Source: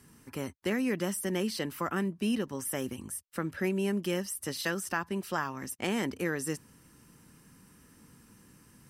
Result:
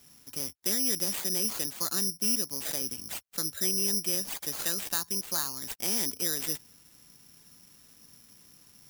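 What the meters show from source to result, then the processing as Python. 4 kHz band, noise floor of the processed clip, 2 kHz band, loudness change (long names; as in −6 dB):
+8.5 dB, −58 dBFS, −6.0 dB, +4.5 dB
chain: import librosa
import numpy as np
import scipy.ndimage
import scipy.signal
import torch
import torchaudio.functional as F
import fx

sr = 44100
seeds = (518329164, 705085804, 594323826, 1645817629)

y = (np.kron(x[::8], np.eye(8)[0]) * 8)[:len(x)]
y = y * 10.0 ** (-7.5 / 20.0)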